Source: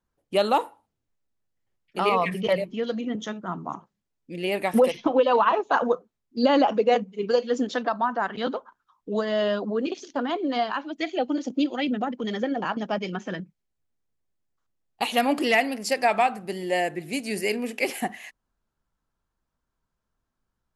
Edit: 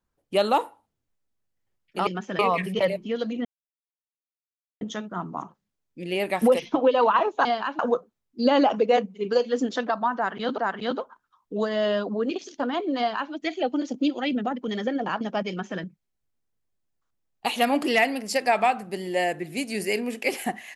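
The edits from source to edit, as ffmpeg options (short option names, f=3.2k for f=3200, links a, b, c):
-filter_complex "[0:a]asplit=7[a][b][c][d][e][f][g];[a]atrim=end=2.072[h];[b]atrim=start=13.048:end=13.372[i];[c]atrim=start=2.068:end=3.13,asetpts=PTS-STARTPTS,afade=t=out:st=1.058:d=0.004:c=hsin,apad=pad_dur=1.36[j];[d]atrim=start=3.13:end=5.772,asetpts=PTS-STARTPTS,afade=t=in:d=0.004:c=hsin[k];[e]atrim=start=10.538:end=10.882[l];[f]atrim=start=5.768:end=8.562[m];[g]atrim=start=8.138[n];[h][i]acrossfade=d=0.004:c1=hsin:c2=hsin[o];[j][k]concat=n=2:v=0:a=1[p];[o][p]acrossfade=d=0.004:c1=hsin:c2=hsin[q];[q][l]acrossfade=d=0.004:c1=hsin:c2=hsin[r];[r][m]acrossfade=d=0.004:c1=hsin:c2=hsin[s];[s][n]acrossfade=d=0.004:c1=hsin:c2=hsin"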